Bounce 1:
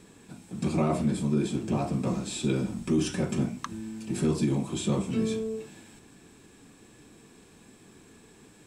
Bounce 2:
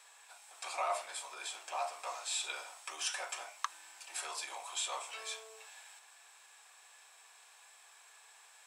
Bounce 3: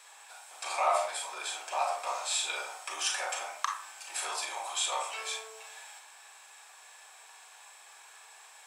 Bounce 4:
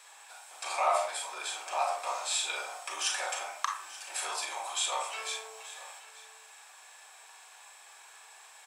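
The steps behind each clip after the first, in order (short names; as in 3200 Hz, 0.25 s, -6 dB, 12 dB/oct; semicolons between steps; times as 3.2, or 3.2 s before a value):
steep high-pass 700 Hz 36 dB/oct
reverb RT60 0.40 s, pre-delay 28 ms, DRR 1 dB; gain +4.5 dB
echo 0.882 s -17.5 dB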